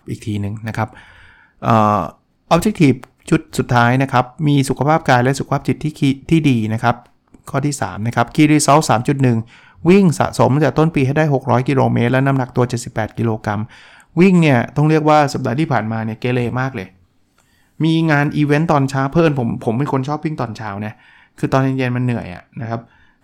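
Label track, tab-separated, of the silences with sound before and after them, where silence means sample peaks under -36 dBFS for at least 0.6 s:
16.880000	17.800000	silence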